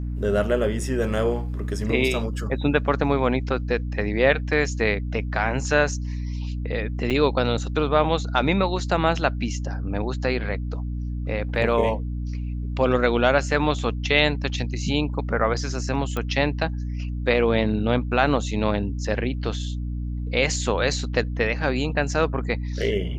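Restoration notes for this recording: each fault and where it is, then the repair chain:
hum 60 Hz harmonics 5 -28 dBFS
7.10–7.11 s: dropout 6.6 ms
16.17 s: pop -14 dBFS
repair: de-click; de-hum 60 Hz, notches 5; interpolate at 7.10 s, 6.6 ms

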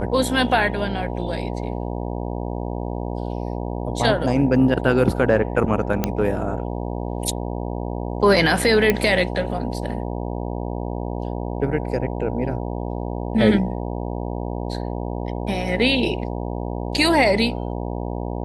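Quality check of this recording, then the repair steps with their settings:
buzz 60 Hz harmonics 16 -27 dBFS
6.04 s: pop -6 dBFS
8.90 s: pop -4 dBFS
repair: de-click; de-hum 60 Hz, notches 16

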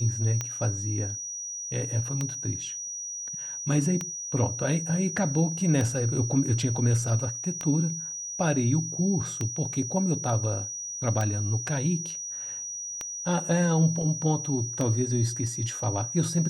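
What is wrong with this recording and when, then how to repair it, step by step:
tick 33 1/3 rpm -15 dBFS
whine 5.8 kHz -33 dBFS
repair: de-click; band-stop 5.8 kHz, Q 30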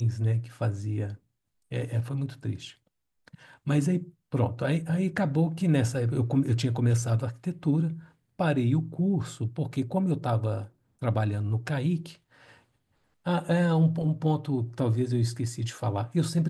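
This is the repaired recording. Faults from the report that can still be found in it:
nothing left

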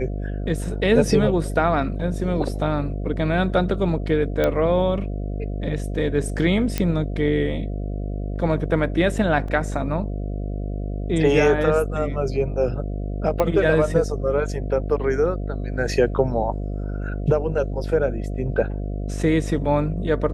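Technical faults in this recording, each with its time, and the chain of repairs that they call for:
buzz 50 Hz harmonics 14 -27 dBFS
4.44 s: pop -9 dBFS
6.78 s: pop -8 dBFS
9.48 s: dropout 3.3 ms
13.40 s: pop -9 dBFS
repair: de-click; de-hum 50 Hz, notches 14; interpolate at 9.48 s, 3.3 ms

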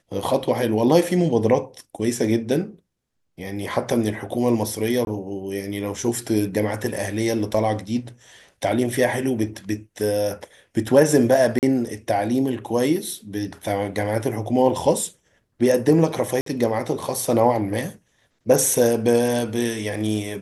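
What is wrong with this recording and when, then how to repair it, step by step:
5.05–5.07 s: dropout 21 ms
7.54 s: dropout 4.6 ms
11.59–11.63 s: dropout 38 ms
16.41–16.46 s: dropout 53 ms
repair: interpolate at 5.05 s, 21 ms; interpolate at 7.54 s, 4.6 ms; interpolate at 11.59 s, 38 ms; interpolate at 16.41 s, 53 ms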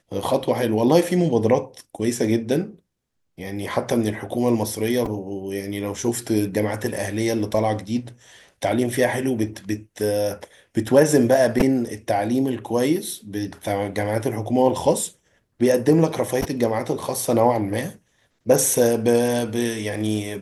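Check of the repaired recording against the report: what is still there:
nothing left

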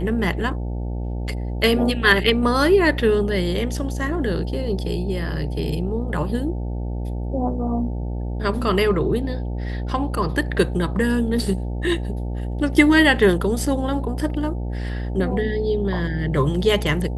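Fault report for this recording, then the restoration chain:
buzz 60 Hz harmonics 15 -26 dBFS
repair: de-hum 60 Hz, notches 15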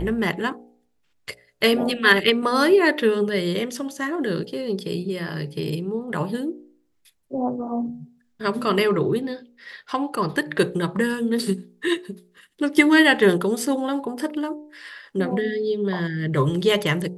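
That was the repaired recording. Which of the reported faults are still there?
nothing left

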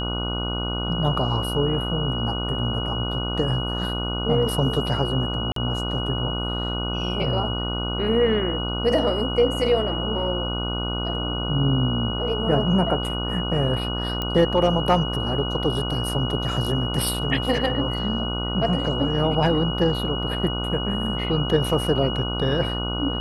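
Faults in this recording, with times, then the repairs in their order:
buzz 60 Hz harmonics 25 -28 dBFS
whine 2.9 kHz -29 dBFS
5.52–5.56 s: dropout 43 ms
14.22 s: pop -13 dBFS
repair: de-click; band-stop 2.9 kHz, Q 30; de-hum 60 Hz, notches 25; interpolate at 5.52 s, 43 ms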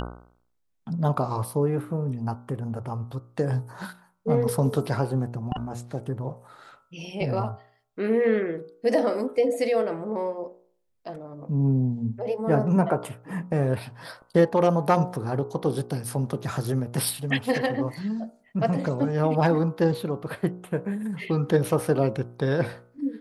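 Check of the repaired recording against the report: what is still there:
14.22 s: pop

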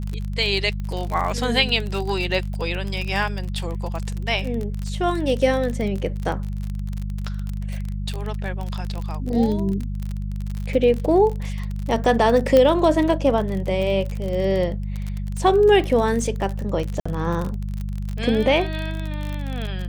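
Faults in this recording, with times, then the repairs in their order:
crackle 37 per s -25 dBFS
hum 50 Hz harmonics 4 -27 dBFS
0.80 s: pop -21 dBFS
12.57 s: pop -6 dBFS
17.00–17.05 s: dropout 55 ms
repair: de-click; de-hum 50 Hz, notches 4; interpolate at 17.00 s, 55 ms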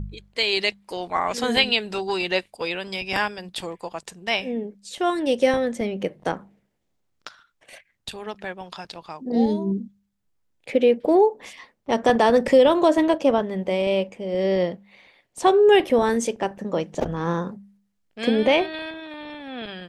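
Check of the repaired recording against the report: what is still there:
nothing left

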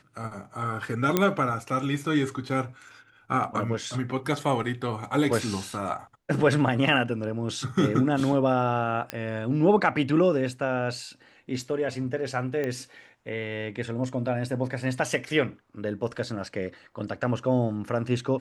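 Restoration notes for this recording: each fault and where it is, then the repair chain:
1.17 s: pop -7 dBFS
9.10 s: pop -14 dBFS
12.64 s: pop -18 dBFS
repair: de-click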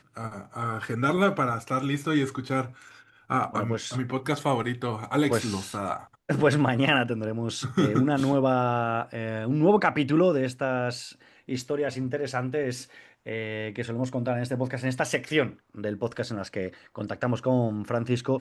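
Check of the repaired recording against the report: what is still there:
nothing left

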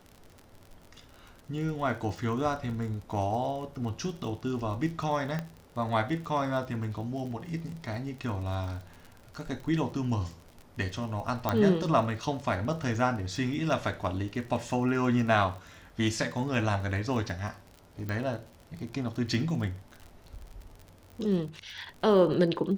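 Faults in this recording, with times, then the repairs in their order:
crackle 48 per s -38 dBFS
5.39 s: pop -20 dBFS
11.49 s: pop -13 dBFS
18.09 s: pop -22 dBFS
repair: de-click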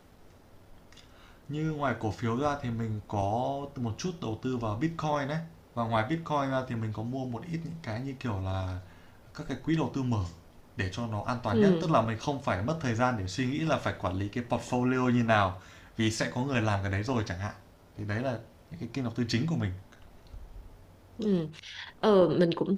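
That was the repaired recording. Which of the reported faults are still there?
5.39 s: pop
11.49 s: pop

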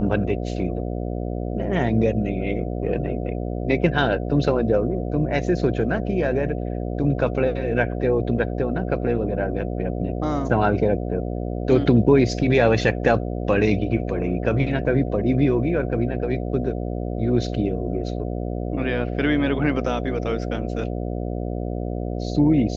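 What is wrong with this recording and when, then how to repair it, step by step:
buzz 60 Hz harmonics 12 -27 dBFS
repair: de-hum 60 Hz, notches 12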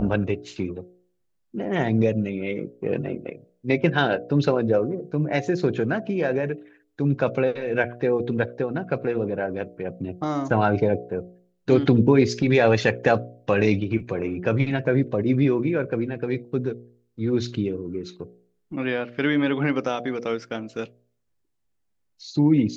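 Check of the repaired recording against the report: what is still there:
nothing left

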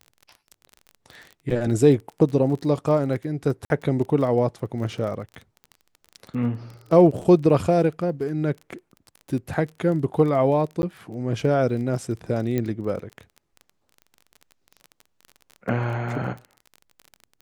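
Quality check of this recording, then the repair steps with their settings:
crackle 22 per s -32 dBFS
3.65–3.70 s: dropout 51 ms
10.82–10.83 s: dropout 11 ms
12.58 s: pop -13 dBFS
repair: de-click; interpolate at 3.65 s, 51 ms; interpolate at 10.82 s, 11 ms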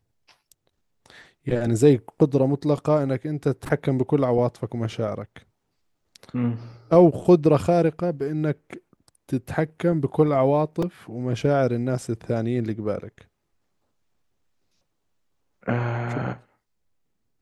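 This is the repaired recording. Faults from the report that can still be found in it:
nothing left

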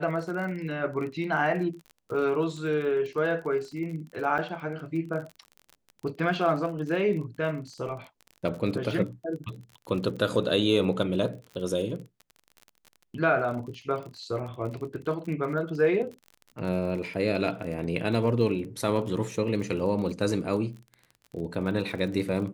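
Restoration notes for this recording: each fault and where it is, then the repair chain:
crackle 37 per s -36 dBFS
4.38–4.39 s: dropout 7.3 ms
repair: de-click; interpolate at 4.38 s, 7.3 ms

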